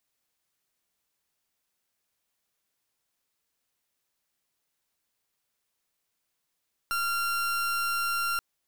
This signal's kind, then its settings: pulse 1380 Hz, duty 39% -28.5 dBFS 1.48 s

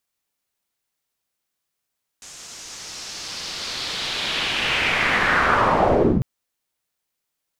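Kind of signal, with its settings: swept filtered noise white, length 4.00 s lowpass, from 7000 Hz, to 110 Hz, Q 2.4, linear, gain ramp +37 dB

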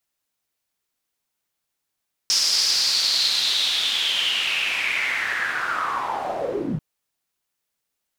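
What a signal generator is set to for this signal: swept filtered noise pink, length 4.49 s bandpass, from 5300 Hz, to 140 Hz, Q 6, linear, gain ramp -8 dB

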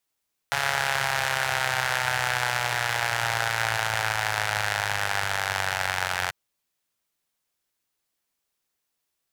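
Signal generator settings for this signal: four-cylinder engine model, changing speed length 5.79 s, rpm 4200, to 2700, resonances 110/830/1500 Hz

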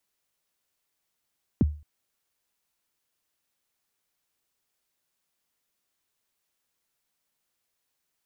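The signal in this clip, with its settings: kick drum length 0.22 s, from 330 Hz, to 75 Hz, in 26 ms, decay 0.36 s, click off, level -14 dB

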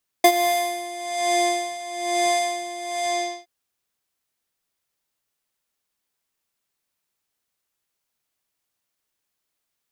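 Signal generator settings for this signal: synth patch with tremolo F5, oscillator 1 square, oscillator 2 square, interval -12 st, detune 8 cents, oscillator 2 level -10.5 dB, noise -14 dB, filter lowpass, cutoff 5500 Hz, Q 1.8, filter envelope 1.5 oct, filter decay 0.86 s, filter sustain 40%, attack 4.8 ms, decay 0.07 s, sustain -15.5 dB, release 0.47 s, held 2.75 s, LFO 1.1 Hz, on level 13.5 dB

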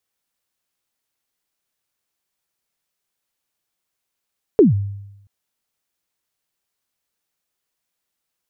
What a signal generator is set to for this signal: kick drum length 0.68 s, from 470 Hz, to 100 Hz, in 0.144 s, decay 0.90 s, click off, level -5 dB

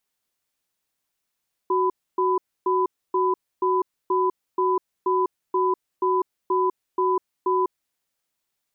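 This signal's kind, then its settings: cadence 371 Hz, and 1000 Hz, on 0.20 s, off 0.28 s, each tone -21 dBFS 6.13 s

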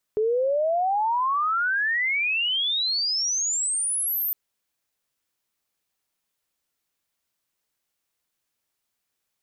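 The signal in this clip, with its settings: chirp logarithmic 420 Hz -> 14000 Hz -19.5 dBFS -> -23 dBFS 4.16 s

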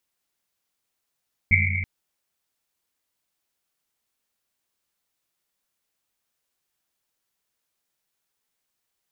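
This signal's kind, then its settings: Risset drum length 0.33 s, pitch 91 Hz, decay 2.99 s, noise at 2200 Hz, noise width 270 Hz, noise 50%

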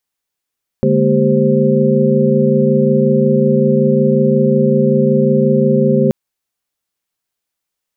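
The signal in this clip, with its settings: chord D3/G#3/A#3/G4/C5 sine, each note -15.5 dBFS 5.28 s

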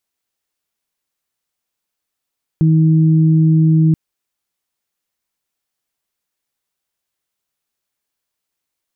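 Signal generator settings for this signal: steady additive tone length 1.33 s, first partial 159 Hz, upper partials -10 dB, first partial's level -8.5 dB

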